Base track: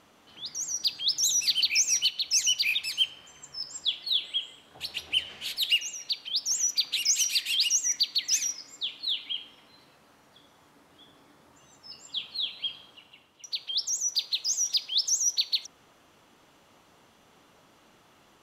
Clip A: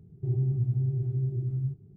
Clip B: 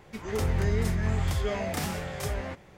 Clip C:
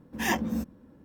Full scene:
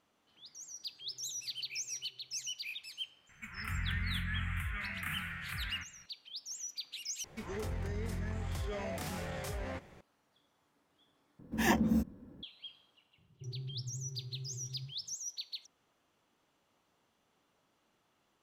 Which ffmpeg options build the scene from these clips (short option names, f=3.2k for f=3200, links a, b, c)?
-filter_complex "[1:a]asplit=2[a][b];[2:a]asplit=2[c][d];[0:a]volume=-16dB[e];[a]asplit=3[f][g][h];[f]bandpass=f=530:t=q:w=8,volume=0dB[i];[g]bandpass=f=1.84k:t=q:w=8,volume=-6dB[j];[h]bandpass=f=2.48k:t=q:w=8,volume=-9dB[k];[i][j][k]amix=inputs=3:normalize=0[l];[c]firequalizer=gain_entry='entry(170,0);entry(460,-29);entry(660,-17);entry(1400,11);entry(2600,11);entry(4500,-28);entry(8600,-1);entry(14000,3)':delay=0.05:min_phase=1[m];[d]acompressor=threshold=-30dB:ratio=4:attack=0.12:release=95:knee=1:detection=peak[n];[3:a]lowshelf=f=430:g=6[o];[e]asplit=3[p][q][r];[p]atrim=end=7.244[s];[n]atrim=end=2.77,asetpts=PTS-STARTPTS,volume=-3.5dB[t];[q]atrim=start=10.006:end=11.394[u];[o]atrim=end=1.04,asetpts=PTS-STARTPTS,volume=-4dB[v];[r]atrim=start=12.426[w];[l]atrim=end=1.96,asetpts=PTS-STARTPTS,volume=-15.5dB,afade=t=in:d=0.004:c=hsin,afade=t=out:st=1.956:d=0.004:c=hsin,adelay=780[x];[m]atrim=end=2.77,asetpts=PTS-STARTPTS,volume=-10.5dB,afade=t=in:d=0.004:c=hsin,afade=t=out:st=2.766:d=0.004:c=hsin,adelay=145089S[y];[b]atrim=end=1.96,asetpts=PTS-STARTPTS,volume=-16dB,afade=t=in:d=0.004:c=hsin,afade=t=out:st=1.956:d=0.004:c=hsin,adelay=13180[z];[s][t]acrossfade=d=0.004:c1=hsin:c2=hsin[aa];[aa][u]acrossfade=d=0.004:c1=hsin:c2=hsin[ab];[ab][v]acrossfade=d=0.004:c1=hsin:c2=hsin[ac];[ac][w]acrossfade=d=0.004:c1=hsin:c2=hsin[ad];[ad][x][y][z]amix=inputs=4:normalize=0"